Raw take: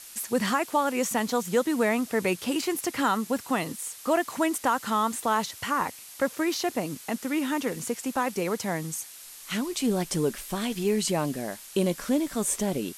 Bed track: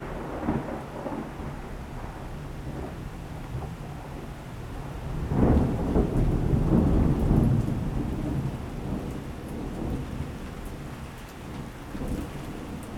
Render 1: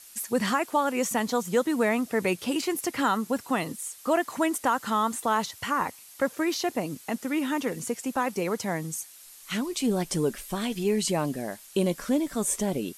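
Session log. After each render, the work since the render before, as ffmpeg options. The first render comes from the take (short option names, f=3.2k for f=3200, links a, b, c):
-af "afftdn=nr=6:nf=-46"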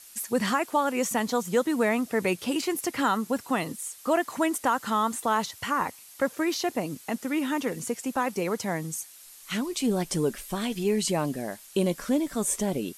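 -af anull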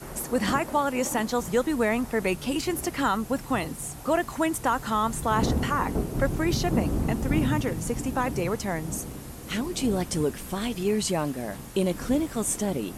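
-filter_complex "[1:a]volume=-4.5dB[a];[0:a][a]amix=inputs=2:normalize=0"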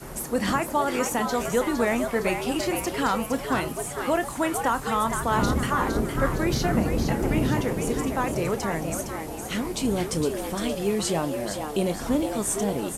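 -filter_complex "[0:a]asplit=2[a][b];[b]adelay=30,volume=-13dB[c];[a][c]amix=inputs=2:normalize=0,asplit=7[d][e][f][g][h][i][j];[e]adelay=461,afreqshift=150,volume=-7dB[k];[f]adelay=922,afreqshift=300,volume=-13.6dB[l];[g]adelay=1383,afreqshift=450,volume=-20.1dB[m];[h]adelay=1844,afreqshift=600,volume=-26.7dB[n];[i]adelay=2305,afreqshift=750,volume=-33.2dB[o];[j]adelay=2766,afreqshift=900,volume=-39.8dB[p];[d][k][l][m][n][o][p]amix=inputs=7:normalize=0"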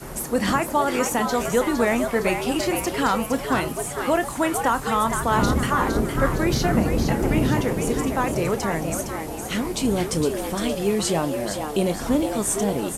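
-af "volume=3dB"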